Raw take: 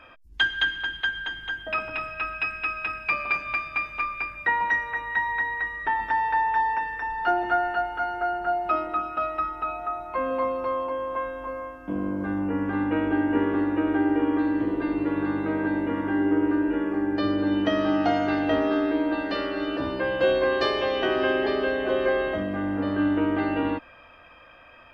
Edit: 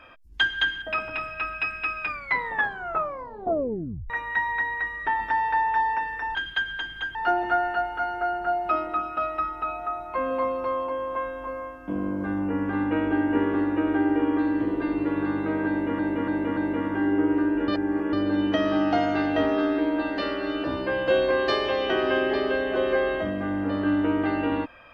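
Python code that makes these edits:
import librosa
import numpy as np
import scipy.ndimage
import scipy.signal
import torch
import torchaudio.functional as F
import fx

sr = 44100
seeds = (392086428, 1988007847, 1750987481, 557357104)

y = fx.edit(x, sr, fx.move(start_s=0.82, length_s=0.8, to_s=7.15),
    fx.tape_stop(start_s=2.81, length_s=2.09),
    fx.repeat(start_s=15.7, length_s=0.29, count=4),
    fx.reverse_span(start_s=16.81, length_s=0.45), tone=tone)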